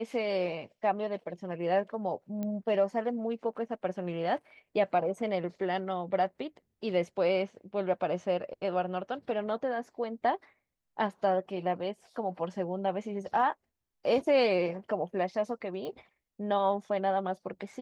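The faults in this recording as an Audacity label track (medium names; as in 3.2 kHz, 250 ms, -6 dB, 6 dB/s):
2.430000	2.430000	pop -23 dBFS
15.850000	15.850000	pop -28 dBFS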